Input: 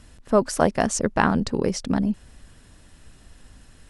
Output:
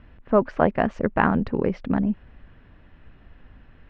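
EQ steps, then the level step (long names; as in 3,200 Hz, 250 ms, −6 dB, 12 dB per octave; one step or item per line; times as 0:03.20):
low-pass filter 2,600 Hz 24 dB per octave
0.0 dB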